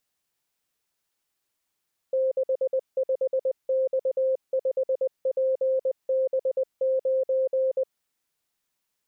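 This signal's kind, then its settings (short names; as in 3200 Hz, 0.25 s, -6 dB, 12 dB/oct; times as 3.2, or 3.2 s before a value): Morse "65X5PB9" 20 wpm 525 Hz -20.5 dBFS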